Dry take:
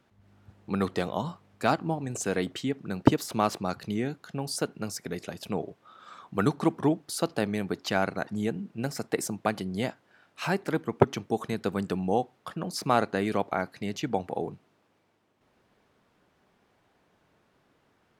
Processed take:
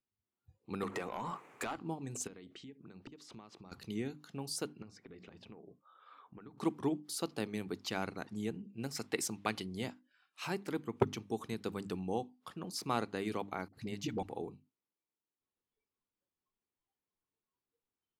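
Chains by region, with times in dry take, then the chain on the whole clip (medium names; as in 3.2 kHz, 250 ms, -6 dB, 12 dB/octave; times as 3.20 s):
0.83–1.76 s: high-order bell 4.1 kHz -11.5 dB 1.1 oct + compression 8:1, threshold -38 dBFS + overdrive pedal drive 28 dB, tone 3 kHz, clips at -15 dBFS
2.27–3.72 s: compression 12:1, threshold -38 dBFS + distance through air 97 m
4.82–6.58 s: low-pass 2.4 kHz + hum notches 60/120/180/240 Hz + compression 16:1, threshold -38 dBFS
8.93–9.66 s: peaking EQ 2.8 kHz +7 dB 2.8 oct + tape noise reduction on one side only decoder only
13.68–14.23 s: bass shelf 160 Hz +8 dB + phase dispersion highs, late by 52 ms, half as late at 310 Hz
whole clip: hum notches 50/100/150/200/250/300 Hz; spectral noise reduction 21 dB; fifteen-band graphic EQ 160 Hz -5 dB, 630 Hz -9 dB, 1.6 kHz -6 dB; trim -6 dB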